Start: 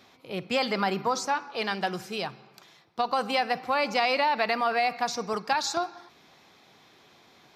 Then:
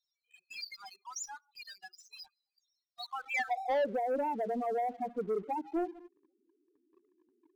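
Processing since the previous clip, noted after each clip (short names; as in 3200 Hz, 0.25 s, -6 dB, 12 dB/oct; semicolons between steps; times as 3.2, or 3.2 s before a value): band-pass sweep 6900 Hz -> 330 Hz, 2.87–3.96; loudest bins only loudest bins 4; sample leveller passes 2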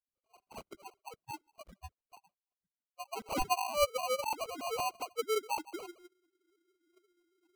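sine-wave speech; sample-and-hold 25×; gain -1.5 dB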